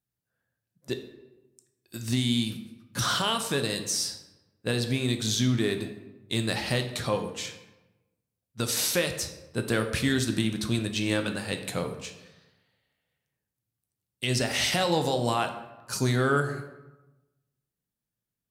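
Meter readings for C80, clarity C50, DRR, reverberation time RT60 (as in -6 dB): 12.0 dB, 9.0 dB, 6.0 dB, 1.1 s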